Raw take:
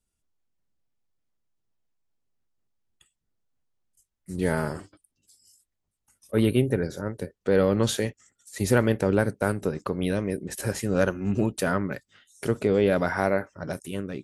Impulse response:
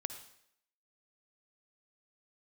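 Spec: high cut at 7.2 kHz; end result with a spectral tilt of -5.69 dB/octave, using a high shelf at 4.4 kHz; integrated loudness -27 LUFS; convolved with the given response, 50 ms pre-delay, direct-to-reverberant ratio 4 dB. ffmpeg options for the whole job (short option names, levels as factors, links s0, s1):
-filter_complex "[0:a]lowpass=7200,highshelf=f=4400:g=5,asplit=2[s0][s1];[1:a]atrim=start_sample=2205,adelay=50[s2];[s1][s2]afir=irnorm=-1:irlink=0,volume=0.668[s3];[s0][s3]amix=inputs=2:normalize=0,volume=0.75"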